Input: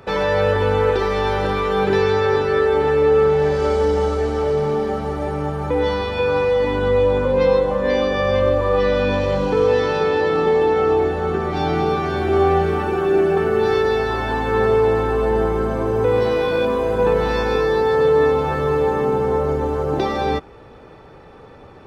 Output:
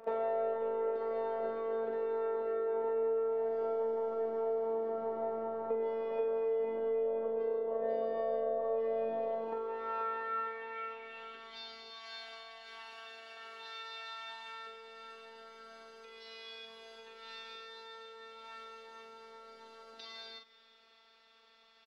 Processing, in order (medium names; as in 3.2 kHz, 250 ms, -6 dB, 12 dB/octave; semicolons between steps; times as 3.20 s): 11.90–14.67 s: resonant low shelf 530 Hz -6.5 dB, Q 1.5; compression 6:1, threshold -24 dBFS, peak gain reduction 12 dB; band-pass sweep 590 Hz -> 4.2 kHz, 9.15–11.69 s; robot voice 225 Hz; doubling 43 ms -6 dB; delay 355 ms -22 dB